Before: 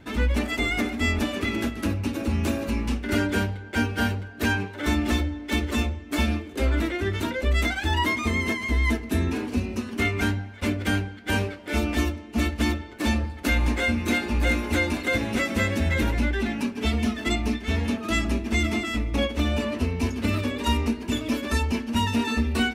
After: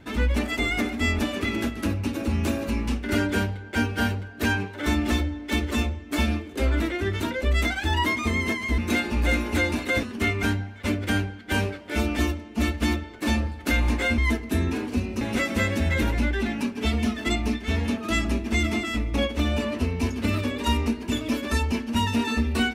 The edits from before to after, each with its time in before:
8.78–9.81 s: swap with 13.96–15.21 s

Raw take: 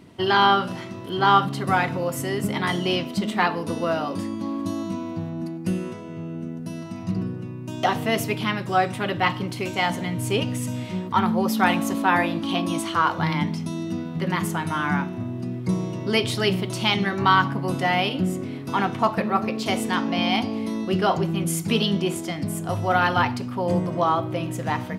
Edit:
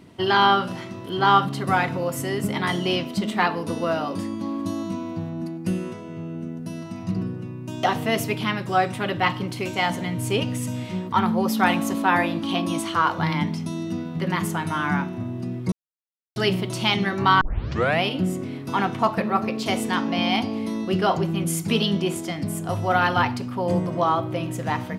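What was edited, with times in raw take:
15.72–16.36 s: mute
17.41 s: tape start 0.61 s

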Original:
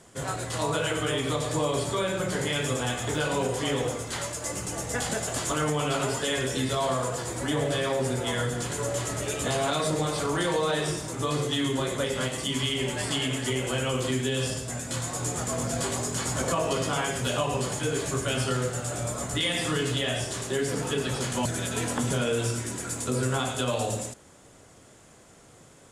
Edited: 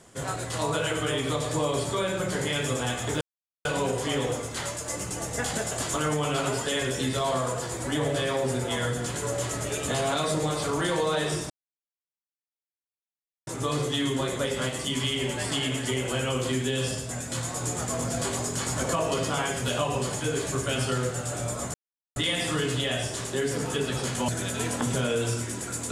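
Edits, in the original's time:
3.21 s: insert silence 0.44 s
11.06 s: insert silence 1.97 s
19.33 s: insert silence 0.42 s

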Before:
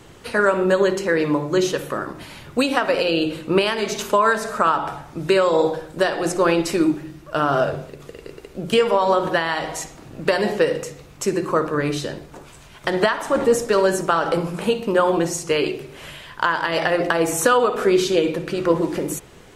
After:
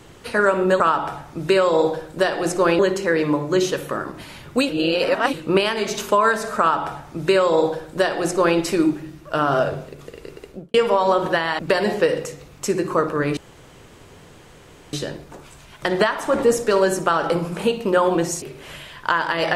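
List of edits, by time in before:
2.70–3.34 s: reverse
4.60–6.59 s: copy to 0.80 s
8.46–8.75 s: studio fade out
9.60–10.17 s: delete
11.95 s: insert room tone 1.56 s
15.44–15.76 s: delete

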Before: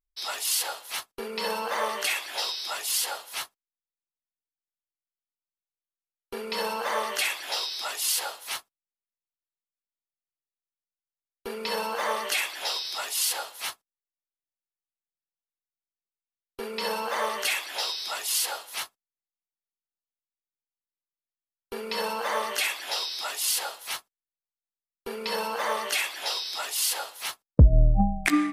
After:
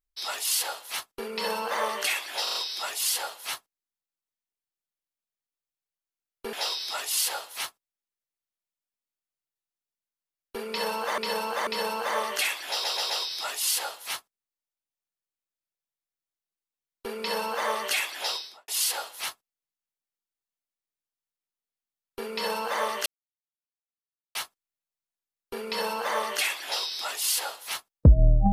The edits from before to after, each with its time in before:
2.43 s: stutter 0.04 s, 4 plays
6.41–7.44 s: delete
11.60–12.09 s: loop, 3 plays
12.64 s: stutter 0.13 s, 4 plays
17.84–18.22 s: studio fade out
22.60–23.89 s: mute

